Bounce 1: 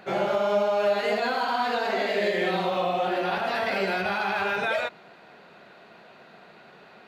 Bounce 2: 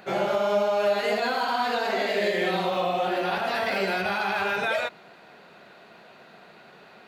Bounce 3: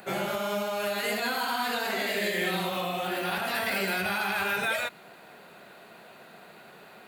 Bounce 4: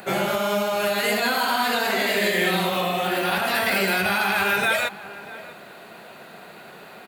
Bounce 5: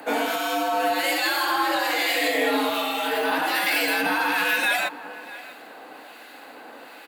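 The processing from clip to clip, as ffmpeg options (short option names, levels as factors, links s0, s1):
-af "highshelf=f=6400:g=6.5"
-filter_complex "[0:a]acrossover=split=310|1100|4000[s0][s1][s2][s3];[s1]acompressor=threshold=0.0141:ratio=4[s4];[s0][s4][s2][s3]amix=inputs=4:normalize=0,aexciter=amount=3.2:drive=7.5:freq=7700"
-filter_complex "[0:a]asplit=2[s0][s1];[s1]adelay=641.4,volume=0.158,highshelf=f=4000:g=-14.4[s2];[s0][s2]amix=inputs=2:normalize=0,volume=2.24"
-filter_complex "[0:a]asplit=2[s0][s1];[s1]asoftclip=type=hard:threshold=0.0668,volume=0.266[s2];[s0][s2]amix=inputs=2:normalize=0,acrossover=split=1400[s3][s4];[s3]aeval=exprs='val(0)*(1-0.5/2+0.5/2*cos(2*PI*1.2*n/s))':c=same[s5];[s4]aeval=exprs='val(0)*(1-0.5/2-0.5/2*cos(2*PI*1.2*n/s))':c=same[s6];[s5][s6]amix=inputs=2:normalize=0,afreqshift=92"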